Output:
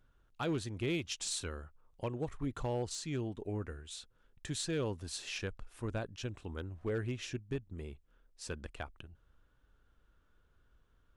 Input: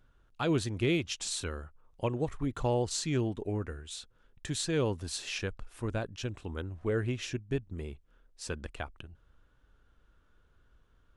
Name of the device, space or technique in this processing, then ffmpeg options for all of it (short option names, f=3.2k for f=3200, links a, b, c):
limiter into clipper: -filter_complex "[0:a]asettb=1/sr,asplit=3[a][b][c];[a]atrim=end=0.934[d];[b]atrim=start=0.93:end=1.39,asetpts=PTS-STARTPTS,afade=t=in:d=0.004:c=qsin,afade=t=out:st=0.456:d=0.004:c=qsin,highshelf=f=2.7k:g=3[e];[c]atrim=start=1.386[f];[d][e]acrossfade=d=0.004:c1=hsin:c2=qsin[g];[g][f]acrossfade=d=0.004:c1=qsin:c2=hsin,alimiter=limit=-22dB:level=0:latency=1:release=470,asoftclip=type=hard:threshold=-24.5dB,volume=-4dB"